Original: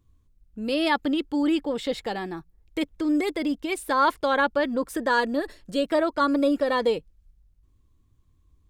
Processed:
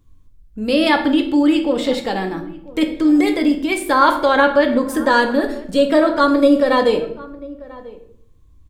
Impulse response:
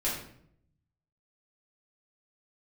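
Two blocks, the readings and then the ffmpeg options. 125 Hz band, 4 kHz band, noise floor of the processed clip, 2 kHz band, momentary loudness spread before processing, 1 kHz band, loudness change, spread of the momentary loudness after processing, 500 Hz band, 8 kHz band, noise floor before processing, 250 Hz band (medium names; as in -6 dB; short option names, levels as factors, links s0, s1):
+9.5 dB, +8.0 dB, -48 dBFS, +8.0 dB, 9 LU, +8.0 dB, +9.0 dB, 15 LU, +9.0 dB, +7.5 dB, -63 dBFS, +10.0 dB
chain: -filter_complex "[0:a]asplit=2[s0][s1];[s1]adelay=991.3,volume=0.1,highshelf=f=4000:g=-22.3[s2];[s0][s2]amix=inputs=2:normalize=0,asplit=2[s3][s4];[1:a]atrim=start_sample=2205[s5];[s4][s5]afir=irnorm=-1:irlink=0,volume=0.376[s6];[s3][s6]amix=inputs=2:normalize=0,volume=1.68"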